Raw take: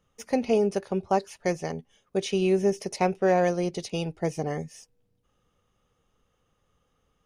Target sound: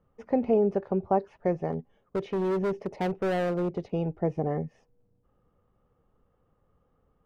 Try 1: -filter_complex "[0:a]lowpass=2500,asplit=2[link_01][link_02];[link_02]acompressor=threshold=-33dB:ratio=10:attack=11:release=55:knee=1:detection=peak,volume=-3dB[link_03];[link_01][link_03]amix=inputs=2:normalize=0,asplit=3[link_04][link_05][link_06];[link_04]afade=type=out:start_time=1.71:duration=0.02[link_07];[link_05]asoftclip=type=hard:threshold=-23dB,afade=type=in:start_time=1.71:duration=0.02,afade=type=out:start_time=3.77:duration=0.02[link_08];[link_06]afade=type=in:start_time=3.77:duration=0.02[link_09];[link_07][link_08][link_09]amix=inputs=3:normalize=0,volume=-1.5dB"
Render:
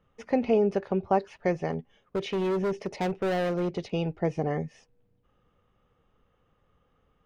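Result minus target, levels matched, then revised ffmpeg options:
2,000 Hz band +3.0 dB
-filter_complex "[0:a]lowpass=1100,asplit=2[link_01][link_02];[link_02]acompressor=threshold=-33dB:ratio=10:attack=11:release=55:knee=1:detection=peak,volume=-3dB[link_03];[link_01][link_03]amix=inputs=2:normalize=0,asplit=3[link_04][link_05][link_06];[link_04]afade=type=out:start_time=1.71:duration=0.02[link_07];[link_05]asoftclip=type=hard:threshold=-23dB,afade=type=in:start_time=1.71:duration=0.02,afade=type=out:start_time=3.77:duration=0.02[link_08];[link_06]afade=type=in:start_time=3.77:duration=0.02[link_09];[link_07][link_08][link_09]amix=inputs=3:normalize=0,volume=-1.5dB"

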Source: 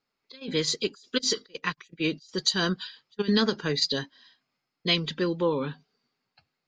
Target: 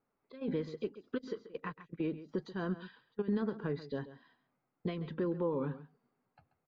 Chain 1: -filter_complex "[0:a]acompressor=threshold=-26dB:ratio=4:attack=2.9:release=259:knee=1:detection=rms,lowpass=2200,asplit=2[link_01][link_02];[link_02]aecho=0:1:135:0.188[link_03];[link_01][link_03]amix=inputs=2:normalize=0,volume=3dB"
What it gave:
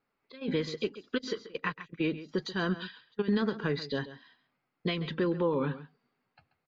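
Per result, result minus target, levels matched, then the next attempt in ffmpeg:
2,000 Hz band +6.5 dB; downward compressor: peak gain reduction −5 dB
-filter_complex "[0:a]acompressor=threshold=-26dB:ratio=4:attack=2.9:release=259:knee=1:detection=rms,lowpass=1100,asplit=2[link_01][link_02];[link_02]aecho=0:1:135:0.188[link_03];[link_01][link_03]amix=inputs=2:normalize=0,volume=3dB"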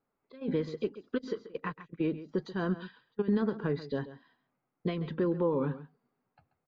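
downward compressor: peak gain reduction −5 dB
-filter_complex "[0:a]acompressor=threshold=-32.5dB:ratio=4:attack=2.9:release=259:knee=1:detection=rms,lowpass=1100,asplit=2[link_01][link_02];[link_02]aecho=0:1:135:0.188[link_03];[link_01][link_03]amix=inputs=2:normalize=0,volume=3dB"

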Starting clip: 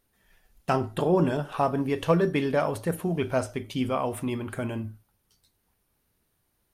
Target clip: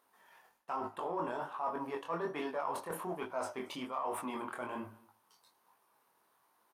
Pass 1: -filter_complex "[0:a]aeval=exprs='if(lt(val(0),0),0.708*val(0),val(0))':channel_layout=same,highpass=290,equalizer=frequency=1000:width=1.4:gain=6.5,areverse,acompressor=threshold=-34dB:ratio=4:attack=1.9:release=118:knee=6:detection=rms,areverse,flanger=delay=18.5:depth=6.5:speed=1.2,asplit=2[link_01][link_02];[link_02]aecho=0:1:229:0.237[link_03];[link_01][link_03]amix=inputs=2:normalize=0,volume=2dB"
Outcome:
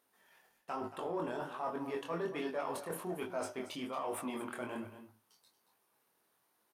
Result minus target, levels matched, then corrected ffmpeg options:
echo-to-direct +11.5 dB; 1,000 Hz band −3.0 dB
-filter_complex "[0:a]aeval=exprs='if(lt(val(0),0),0.708*val(0),val(0))':channel_layout=same,highpass=290,equalizer=frequency=1000:width=1.4:gain=16.5,areverse,acompressor=threshold=-34dB:ratio=4:attack=1.9:release=118:knee=6:detection=rms,areverse,flanger=delay=18.5:depth=6.5:speed=1.2,asplit=2[link_01][link_02];[link_02]aecho=0:1:229:0.0631[link_03];[link_01][link_03]amix=inputs=2:normalize=0,volume=2dB"

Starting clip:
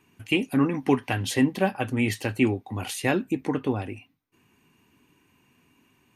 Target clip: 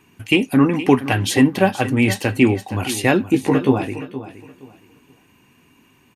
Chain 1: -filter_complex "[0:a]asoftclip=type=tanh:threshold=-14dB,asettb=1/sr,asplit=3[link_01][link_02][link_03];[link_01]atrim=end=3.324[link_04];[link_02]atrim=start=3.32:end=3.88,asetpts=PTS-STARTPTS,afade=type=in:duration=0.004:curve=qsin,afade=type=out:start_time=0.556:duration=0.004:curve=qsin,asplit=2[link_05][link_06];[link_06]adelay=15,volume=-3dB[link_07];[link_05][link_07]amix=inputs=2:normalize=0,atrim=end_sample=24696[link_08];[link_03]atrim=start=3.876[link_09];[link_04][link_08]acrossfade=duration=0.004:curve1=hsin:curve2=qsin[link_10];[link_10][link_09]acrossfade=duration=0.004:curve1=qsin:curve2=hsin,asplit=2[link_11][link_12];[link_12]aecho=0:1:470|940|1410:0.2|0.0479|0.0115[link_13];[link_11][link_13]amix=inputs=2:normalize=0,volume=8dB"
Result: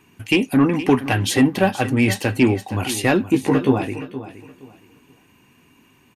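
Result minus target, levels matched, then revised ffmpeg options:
soft clipping: distortion +17 dB
-filter_complex "[0:a]asoftclip=type=tanh:threshold=-4dB,asettb=1/sr,asplit=3[link_01][link_02][link_03];[link_01]atrim=end=3.324[link_04];[link_02]atrim=start=3.32:end=3.88,asetpts=PTS-STARTPTS,afade=type=in:duration=0.004:curve=qsin,afade=type=out:start_time=0.556:duration=0.004:curve=qsin,asplit=2[link_05][link_06];[link_06]adelay=15,volume=-3dB[link_07];[link_05][link_07]amix=inputs=2:normalize=0,atrim=end_sample=24696[link_08];[link_03]atrim=start=3.876[link_09];[link_04][link_08]acrossfade=duration=0.004:curve1=hsin:curve2=qsin[link_10];[link_10][link_09]acrossfade=duration=0.004:curve1=qsin:curve2=hsin,asplit=2[link_11][link_12];[link_12]aecho=0:1:470|940|1410:0.2|0.0479|0.0115[link_13];[link_11][link_13]amix=inputs=2:normalize=0,volume=8dB"

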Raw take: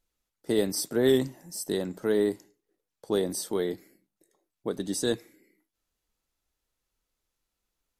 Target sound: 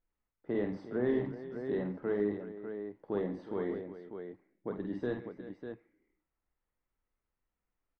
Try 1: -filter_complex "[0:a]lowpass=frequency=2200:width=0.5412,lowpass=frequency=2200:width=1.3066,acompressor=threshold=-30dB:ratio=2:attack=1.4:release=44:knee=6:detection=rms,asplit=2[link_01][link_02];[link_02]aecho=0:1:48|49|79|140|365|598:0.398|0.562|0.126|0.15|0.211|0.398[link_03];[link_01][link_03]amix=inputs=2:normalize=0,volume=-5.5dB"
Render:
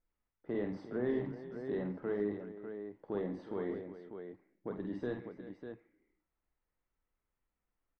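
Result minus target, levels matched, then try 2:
downward compressor: peak gain reduction +3.5 dB
-filter_complex "[0:a]lowpass=frequency=2200:width=0.5412,lowpass=frequency=2200:width=1.3066,acompressor=threshold=-23dB:ratio=2:attack=1.4:release=44:knee=6:detection=rms,asplit=2[link_01][link_02];[link_02]aecho=0:1:48|49|79|140|365|598:0.398|0.562|0.126|0.15|0.211|0.398[link_03];[link_01][link_03]amix=inputs=2:normalize=0,volume=-5.5dB"

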